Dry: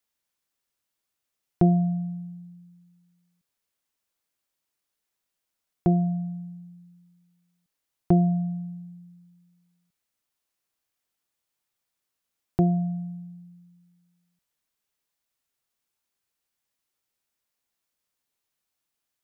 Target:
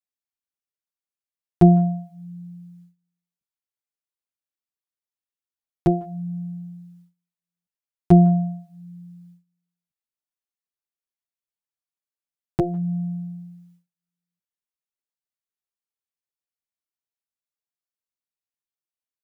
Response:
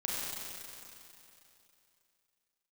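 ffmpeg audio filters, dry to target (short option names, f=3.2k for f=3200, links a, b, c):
-filter_complex "[0:a]asplit=2[a][b];[b]adelay=150,highpass=300,lowpass=3.4k,asoftclip=type=hard:threshold=-19dB,volume=-22dB[c];[a][c]amix=inputs=2:normalize=0,agate=range=-21dB:threshold=-57dB:ratio=16:detection=peak,asplit=2[d][e];[e]adelay=7.8,afreqshift=-0.76[f];[d][f]amix=inputs=2:normalize=1,volume=8dB"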